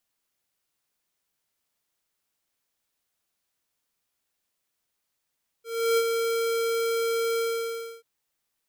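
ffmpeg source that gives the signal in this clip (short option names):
-f lavfi -i "aevalsrc='0.0891*(2*lt(mod(459*t,1),0.5)-1)':d=2.386:s=44100,afade=t=in:d=0.333,afade=t=out:st=0.333:d=0.053:silence=0.562,afade=t=out:st=1.75:d=0.636"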